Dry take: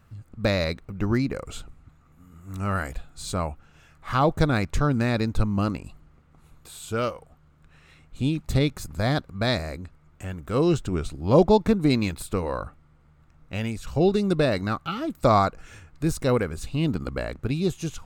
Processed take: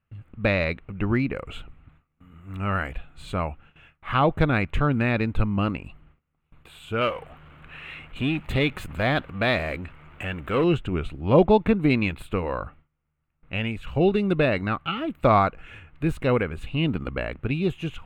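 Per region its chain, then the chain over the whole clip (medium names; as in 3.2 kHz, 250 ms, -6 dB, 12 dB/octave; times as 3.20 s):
7.01–10.64 s: bass shelf 300 Hz -8 dB + power-law waveshaper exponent 0.7
whole clip: gate with hold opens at -43 dBFS; resonant high shelf 3.9 kHz -12 dB, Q 3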